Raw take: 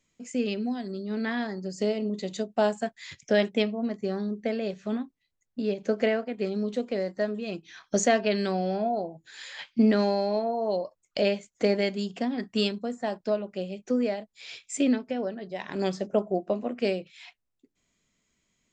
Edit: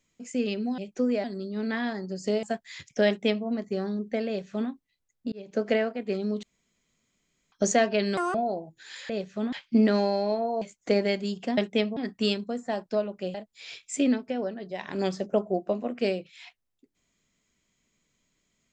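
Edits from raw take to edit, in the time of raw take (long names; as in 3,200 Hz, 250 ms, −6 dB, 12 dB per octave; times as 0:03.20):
0:01.97–0:02.75: remove
0:03.39–0:03.78: duplicate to 0:12.31
0:04.59–0:05.02: duplicate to 0:09.57
0:05.64–0:05.95: fade in
0:06.75–0:07.84: fill with room tone
0:08.49–0:08.82: play speed 189%
0:10.66–0:11.35: remove
0:13.69–0:14.15: move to 0:00.78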